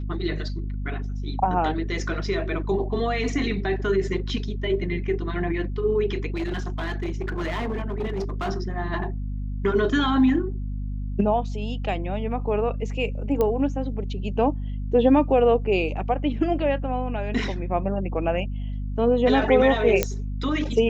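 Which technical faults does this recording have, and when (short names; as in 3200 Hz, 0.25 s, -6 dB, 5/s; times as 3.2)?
hum 50 Hz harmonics 5 -29 dBFS
6.34–8.5 clipped -23 dBFS
13.41 pop -12 dBFS
20.03 pop -5 dBFS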